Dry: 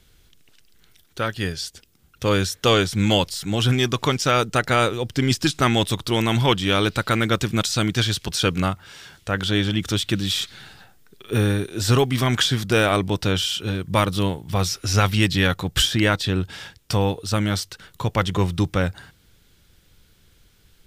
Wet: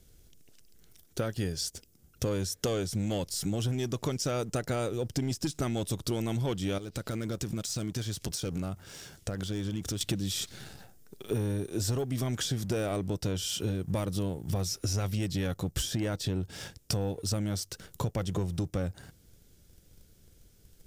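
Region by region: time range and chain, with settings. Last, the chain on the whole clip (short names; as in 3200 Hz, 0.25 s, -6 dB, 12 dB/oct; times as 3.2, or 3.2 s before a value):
6.78–10.01 hard clip -14 dBFS + compressor 8:1, threshold -32 dBFS
whole clip: band shelf 1900 Hz -9.5 dB 2.6 oct; sample leveller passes 1; compressor 12:1, threshold -28 dBFS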